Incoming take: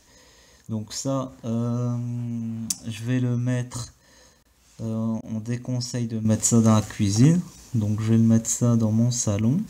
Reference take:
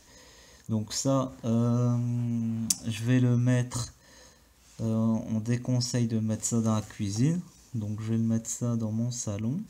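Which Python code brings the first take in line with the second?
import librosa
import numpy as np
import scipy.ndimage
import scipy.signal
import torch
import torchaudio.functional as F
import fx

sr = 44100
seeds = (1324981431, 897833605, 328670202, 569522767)

y = fx.fix_declip(x, sr, threshold_db=-8.0)
y = fx.fix_interpolate(y, sr, at_s=(4.43, 5.21), length_ms=20.0)
y = fx.fix_level(y, sr, at_s=6.25, step_db=-9.0)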